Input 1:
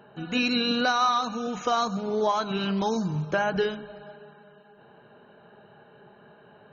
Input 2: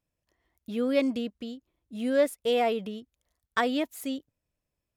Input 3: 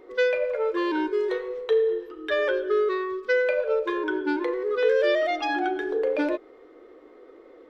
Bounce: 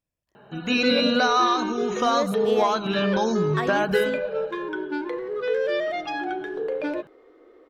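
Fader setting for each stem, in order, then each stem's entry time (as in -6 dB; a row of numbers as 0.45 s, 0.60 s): +2.5 dB, -3.5 dB, -3.0 dB; 0.35 s, 0.00 s, 0.65 s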